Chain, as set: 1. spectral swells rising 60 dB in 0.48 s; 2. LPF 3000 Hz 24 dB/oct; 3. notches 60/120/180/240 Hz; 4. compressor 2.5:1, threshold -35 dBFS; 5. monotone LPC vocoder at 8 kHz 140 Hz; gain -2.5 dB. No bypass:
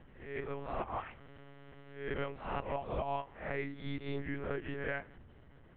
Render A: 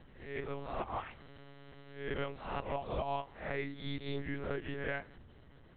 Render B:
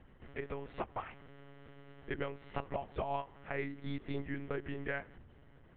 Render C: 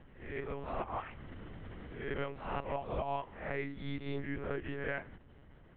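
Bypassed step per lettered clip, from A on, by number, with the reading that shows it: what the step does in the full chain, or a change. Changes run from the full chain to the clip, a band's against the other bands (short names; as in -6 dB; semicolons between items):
2, 4 kHz band +4.5 dB; 1, 250 Hz band +1.5 dB; 3, momentary loudness spread change -7 LU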